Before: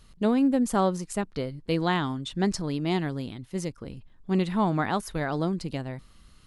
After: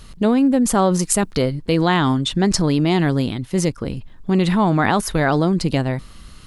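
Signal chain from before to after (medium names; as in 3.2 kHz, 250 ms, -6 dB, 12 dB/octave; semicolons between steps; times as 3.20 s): 0.99–1.42 s: treble shelf 5.3 kHz +8 dB; in parallel at +1 dB: compressor with a negative ratio -30 dBFS, ratio -1; on the sum: trim +5 dB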